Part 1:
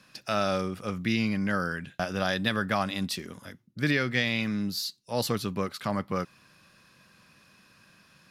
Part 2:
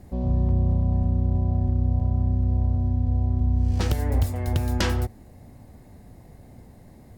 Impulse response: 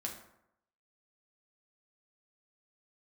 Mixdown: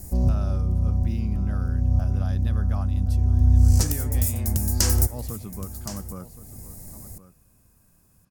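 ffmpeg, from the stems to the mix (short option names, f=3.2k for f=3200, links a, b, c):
-filter_complex "[0:a]equalizer=f=500:t=o:w=1:g=-4,equalizer=f=2k:t=o:w=1:g=-12,equalizer=f=4k:t=o:w=1:g=-10,volume=-7.5dB,asplit=3[a][b][c];[b]volume=-15dB[d];[1:a]aexciter=amount=9.9:drive=7.1:freq=5.2k,volume=-0.5dB,asplit=2[e][f];[f]volume=-20dB[g];[c]apad=whole_len=316609[h];[e][h]sidechaincompress=threshold=-46dB:ratio=3:attack=37:release=564[i];[d][g]amix=inputs=2:normalize=0,aecho=0:1:1069:1[j];[a][i][j]amix=inputs=3:normalize=0,lowshelf=f=120:g=10"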